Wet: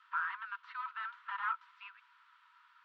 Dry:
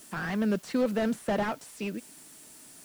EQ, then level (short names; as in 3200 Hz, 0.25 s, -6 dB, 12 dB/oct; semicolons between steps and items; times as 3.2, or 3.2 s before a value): rippled Chebyshev high-pass 940 Hz, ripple 9 dB; ladder low-pass 2100 Hz, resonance 20%; +11.0 dB